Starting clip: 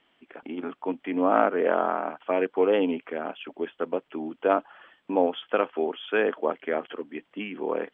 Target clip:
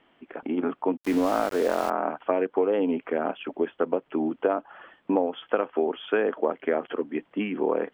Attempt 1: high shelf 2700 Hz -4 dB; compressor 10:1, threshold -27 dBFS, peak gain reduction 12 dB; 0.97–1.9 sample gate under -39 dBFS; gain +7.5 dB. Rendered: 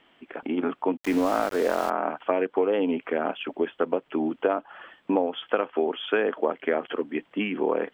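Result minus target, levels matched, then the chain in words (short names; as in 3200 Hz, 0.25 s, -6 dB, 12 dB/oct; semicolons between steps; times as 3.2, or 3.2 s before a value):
4000 Hz band +4.5 dB
high shelf 2700 Hz -14.5 dB; compressor 10:1, threshold -27 dBFS, peak gain reduction 11 dB; 0.97–1.9 sample gate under -39 dBFS; gain +7.5 dB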